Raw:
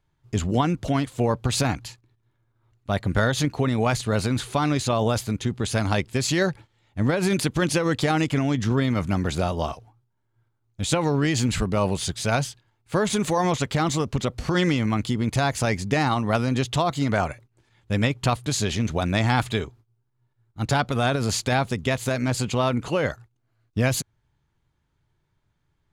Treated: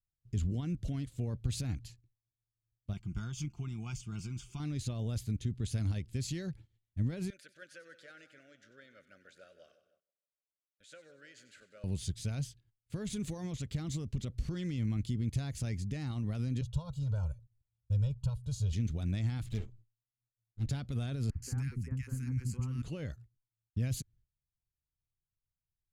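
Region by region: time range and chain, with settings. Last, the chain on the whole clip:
0:02.93–0:04.60: low-shelf EQ 310 Hz −7.5 dB + phaser with its sweep stopped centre 2,700 Hz, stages 8 + comb filter 5.7 ms, depth 46%
0:07.30–0:11.84: pair of resonant band-passes 920 Hz, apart 1.4 octaves + spectral tilt +4.5 dB per octave + echo with a time of its own for lows and highs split 1,500 Hz, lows 156 ms, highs 94 ms, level −13 dB
0:16.61–0:18.73: high-shelf EQ 2,800 Hz −9.5 dB + phaser with its sweep stopped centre 840 Hz, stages 4 + comb filter 2.1 ms, depth 99%
0:19.46–0:20.68: lower of the sound and its delayed copy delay 9.1 ms + high-shelf EQ 5,400 Hz −6.5 dB
0:21.30–0:22.82: phaser with its sweep stopped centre 1,500 Hz, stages 4 + three-band delay without the direct sound mids, lows, highs 50/120 ms, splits 320/1,400 Hz
whole clip: noise gate −55 dBFS, range −18 dB; brickwall limiter −16 dBFS; guitar amp tone stack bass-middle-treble 10-0-1; level +6 dB

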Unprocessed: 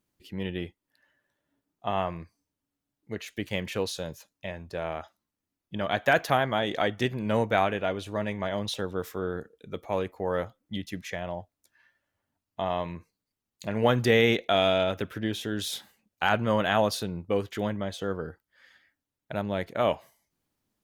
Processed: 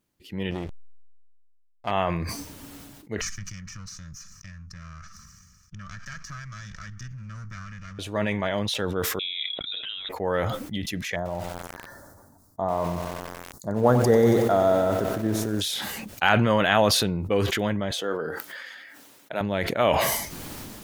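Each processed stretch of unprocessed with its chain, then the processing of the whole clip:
0:00.51–0:01.91: slack as between gear wheels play −37.5 dBFS + saturating transformer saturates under 960 Hz
0:03.21–0:07.99: lower of the sound and its delayed copy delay 1.7 ms + drawn EQ curve 190 Hz 0 dB, 410 Hz −30 dB, 760 Hz −30 dB, 1,300 Hz −1 dB, 3,600 Hz −17 dB, 5,800 Hz +6 dB, 10,000 Hz −17 dB + downward compressor 3 to 1, threshold −41 dBFS
0:09.19–0:10.09: compressor whose output falls as the input rises −39 dBFS + voice inversion scrambler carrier 3,800 Hz
0:11.16–0:15.61: Butterworth band-reject 2,700 Hz, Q 0.61 + feedback echo at a low word length 92 ms, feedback 80%, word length 7 bits, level −11 dB
0:17.91–0:19.41: high-pass filter 290 Hz + double-tracking delay 24 ms −13.5 dB
whole clip: dynamic equaliser 2,200 Hz, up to +4 dB, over −41 dBFS, Q 1; level that may fall only so fast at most 26 dB per second; level +2.5 dB

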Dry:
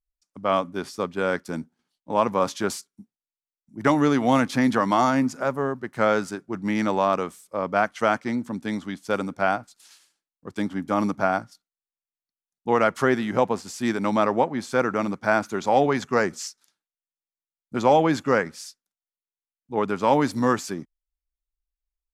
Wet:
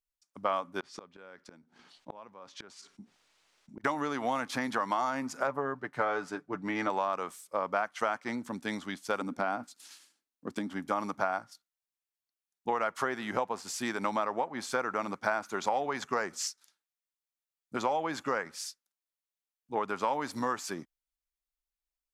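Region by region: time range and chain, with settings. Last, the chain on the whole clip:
0:00.80–0:03.84: high-frequency loss of the air 98 metres + gate with flip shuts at −27 dBFS, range −36 dB + envelope flattener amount 50%
0:05.47–0:06.90: low-pass filter 2,200 Hz 6 dB per octave + comb filter 6.8 ms, depth 50%
0:09.21–0:10.70: parametric band 250 Hz +13.5 dB 0.95 octaves + downward compressor 4 to 1, threshold −22 dBFS
whole clip: dynamic equaliser 980 Hz, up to +5 dB, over −34 dBFS, Q 0.94; downward compressor 10 to 1, threshold −24 dBFS; low-shelf EQ 350 Hz −11 dB

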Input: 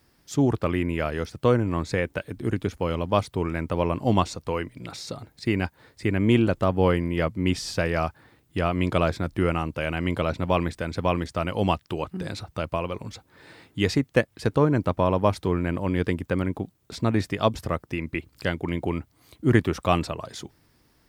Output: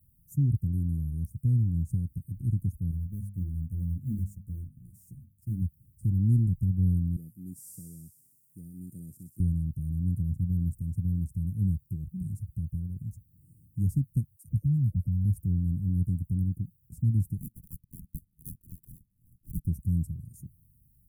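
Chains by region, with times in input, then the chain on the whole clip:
0:02.91–0:05.62: mu-law and A-law mismatch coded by A + mains-hum notches 50/100/150/200/250 Hz + string-ensemble chorus
0:07.16–0:09.40: high-pass filter 360 Hz + delay with a high-pass on its return 63 ms, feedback 76%, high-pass 2,700 Hz, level −3 dB
0:14.36–0:15.25: phaser with its sweep stopped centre 980 Hz, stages 4 + all-pass dispersion lows, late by 85 ms, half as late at 590 Hz
0:17.38–0:19.67: high-pass filter 1,400 Hz + sample-and-hold swept by an LFO 26×, swing 60% 2.5 Hz
whole clip: inverse Chebyshev band-stop filter 740–2,800 Hz, stop band 80 dB; parametric band 4,100 Hz −12.5 dB 0.61 octaves; level +3 dB

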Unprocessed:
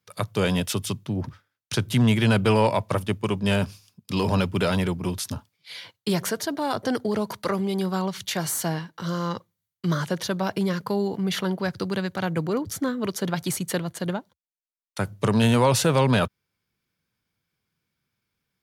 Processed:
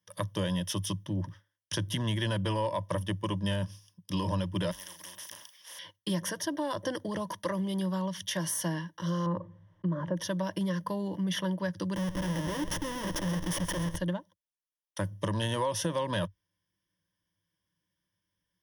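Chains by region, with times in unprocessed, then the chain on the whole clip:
0:04.71–0:05.79: high-pass filter 990 Hz + double-tracking delay 37 ms −11 dB + every bin compressed towards the loudest bin 10 to 1
0:09.26–0:10.17: low-pass filter 1,000 Hz + envelope flattener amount 50%
0:11.95–0:13.96: comparator with hysteresis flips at −31.5 dBFS + repeating echo 131 ms, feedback 51%, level −13 dB
whole clip: EQ curve with evenly spaced ripples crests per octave 1.2, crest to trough 14 dB; downward compressor, threshold −20 dBFS; level −7 dB

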